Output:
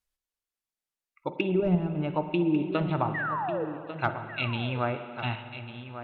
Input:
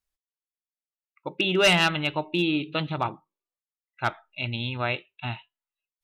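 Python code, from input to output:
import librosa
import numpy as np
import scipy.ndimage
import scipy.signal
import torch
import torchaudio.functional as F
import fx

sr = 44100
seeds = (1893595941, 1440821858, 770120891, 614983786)

p1 = fx.spec_paint(x, sr, seeds[0], shape='fall', start_s=3.14, length_s=0.51, low_hz=430.0, high_hz=2000.0, level_db=-33.0)
p2 = fx.level_steps(p1, sr, step_db=20)
p3 = p1 + F.gain(torch.from_numpy(p2), 0.0).numpy()
p4 = fx.env_lowpass_down(p3, sr, base_hz=310.0, full_db=-17.5)
p5 = p4 + fx.echo_single(p4, sr, ms=1146, db=-11.5, dry=0)
p6 = fx.rev_spring(p5, sr, rt60_s=2.4, pass_ms=(45, 54), chirp_ms=30, drr_db=9.0)
y = F.gain(torch.from_numpy(p6), -1.0).numpy()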